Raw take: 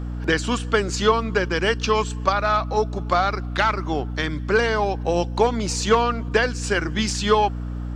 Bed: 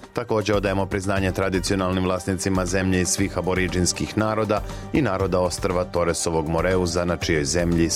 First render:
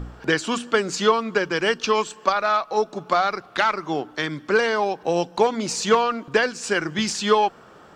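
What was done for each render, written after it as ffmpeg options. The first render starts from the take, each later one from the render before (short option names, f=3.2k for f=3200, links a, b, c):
-af "bandreject=f=60:t=h:w=4,bandreject=f=120:t=h:w=4,bandreject=f=180:t=h:w=4,bandreject=f=240:t=h:w=4,bandreject=f=300:t=h:w=4"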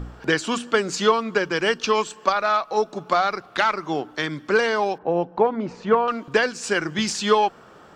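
-filter_complex "[0:a]asettb=1/sr,asplit=3[a][b][c];[a]atrim=end=4.984[d];[b]atrim=start=4.98:end=6.08,asetpts=PTS-STARTPTS,afade=t=in:d=0.004:c=qsin,afade=t=out:st=1.096:d=0.004:c=qsin,lowpass=1.4k[e];[c]atrim=start=6.076[f];[d][e]acrossfade=d=0.004:c1=hsin:c2=qsin[g];[g][f]acrossfade=d=0.004:c1=qsin:c2=hsin"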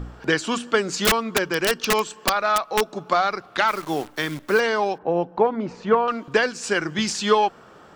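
-filter_complex "[0:a]asettb=1/sr,asplit=3[a][b][c];[a]atrim=end=0.974[d];[b]atrim=start=0.97:end=2.95,asetpts=PTS-STARTPTS,afade=t=in:d=0.004:c=qsin,afade=t=out:st=1.976:d=0.004:c=qsin,aeval=exprs='(mod(3.55*val(0)+1,2)-1)/3.55':c=same[e];[c]atrim=start=2.946[f];[d][e]acrossfade=d=0.004:c1=hsin:c2=qsin[g];[g][f]acrossfade=d=0.004:c1=qsin:c2=hsin,asplit=3[h][i][j];[h]afade=t=out:st=3.67:d=0.02[k];[i]acrusher=bits=7:dc=4:mix=0:aa=0.000001,afade=t=in:st=3.67:d=0.02,afade=t=out:st=4.59:d=0.02[l];[j]afade=t=in:st=4.59:d=0.02[m];[k][l][m]amix=inputs=3:normalize=0"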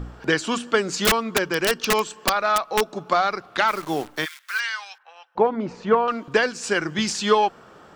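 -filter_complex "[0:a]asplit=3[a][b][c];[a]afade=t=out:st=4.24:d=0.02[d];[b]highpass=f=1.4k:w=0.5412,highpass=f=1.4k:w=1.3066,afade=t=in:st=4.24:d=0.02,afade=t=out:st=5.35:d=0.02[e];[c]afade=t=in:st=5.35:d=0.02[f];[d][e][f]amix=inputs=3:normalize=0"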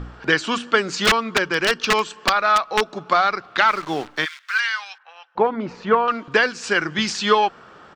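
-af "firequalizer=gain_entry='entry(650,0);entry(1300,5);entry(4300,3);entry(12000,-13)':delay=0.05:min_phase=1"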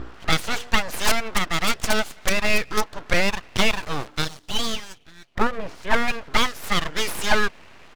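-af "aeval=exprs='abs(val(0))':c=same"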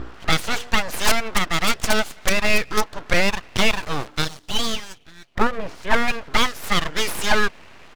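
-af "volume=2dB,alimiter=limit=-3dB:level=0:latency=1"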